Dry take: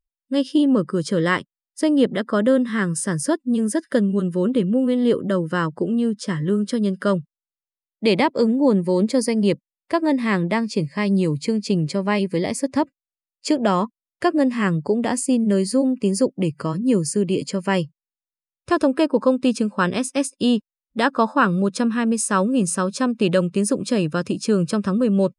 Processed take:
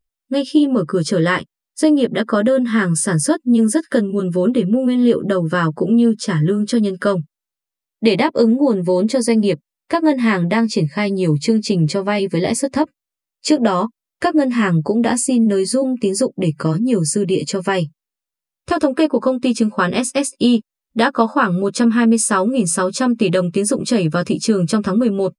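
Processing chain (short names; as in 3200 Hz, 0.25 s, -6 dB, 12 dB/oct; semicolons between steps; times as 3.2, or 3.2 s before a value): compressor 3:1, threshold -19 dBFS, peak gain reduction 6.5 dB; doubler 13 ms -4 dB; gain +5.5 dB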